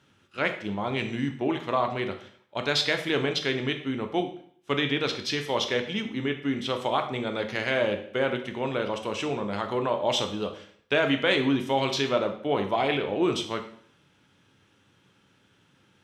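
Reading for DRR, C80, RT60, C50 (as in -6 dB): 5.0 dB, 13.0 dB, 0.60 s, 10.0 dB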